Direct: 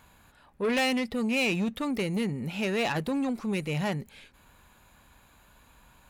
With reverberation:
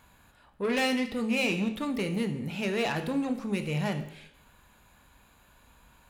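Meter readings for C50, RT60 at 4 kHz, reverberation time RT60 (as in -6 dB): 11.0 dB, 0.70 s, 0.75 s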